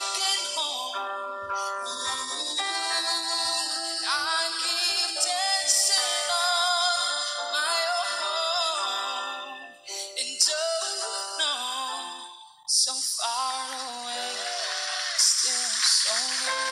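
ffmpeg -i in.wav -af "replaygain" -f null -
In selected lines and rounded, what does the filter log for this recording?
track_gain = +5.2 dB
track_peak = 0.267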